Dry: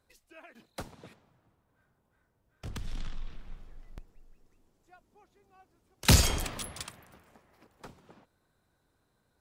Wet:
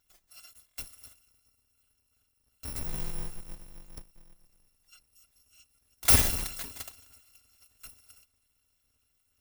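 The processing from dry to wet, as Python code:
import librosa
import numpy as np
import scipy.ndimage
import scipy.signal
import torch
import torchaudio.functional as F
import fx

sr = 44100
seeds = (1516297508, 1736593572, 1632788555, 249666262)

y = fx.bit_reversed(x, sr, seeds[0], block=256)
y = fx.doubler(y, sr, ms=14.0, db=-2.0, at=(2.66, 3.41))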